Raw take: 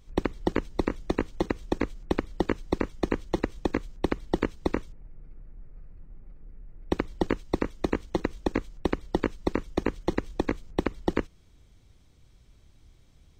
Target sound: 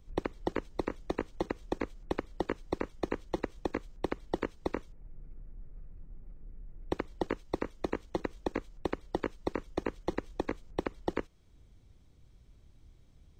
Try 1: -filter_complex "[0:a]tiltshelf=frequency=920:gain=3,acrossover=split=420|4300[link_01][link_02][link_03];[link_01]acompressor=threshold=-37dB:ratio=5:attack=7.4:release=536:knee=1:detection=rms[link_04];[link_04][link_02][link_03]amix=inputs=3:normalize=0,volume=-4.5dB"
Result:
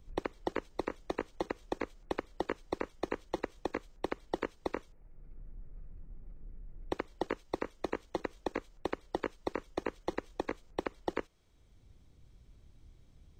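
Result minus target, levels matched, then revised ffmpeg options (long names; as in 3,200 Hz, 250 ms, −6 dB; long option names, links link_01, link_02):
downward compressor: peak gain reduction +7.5 dB
-filter_complex "[0:a]tiltshelf=frequency=920:gain=3,acrossover=split=420|4300[link_01][link_02][link_03];[link_01]acompressor=threshold=-27.5dB:ratio=5:attack=7.4:release=536:knee=1:detection=rms[link_04];[link_04][link_02][link_03]amix=inputs=3:normalize=0,volume=-4.5dB"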